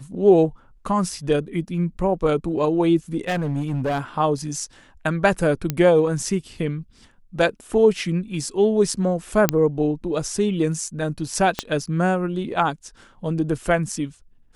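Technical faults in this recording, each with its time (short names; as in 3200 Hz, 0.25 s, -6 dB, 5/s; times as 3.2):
3.27–4 clipped -19.5 dBFS
5.7 pop -8 dBFS
9.49 pop -1 dBFS
11.59 pop -7 dBFS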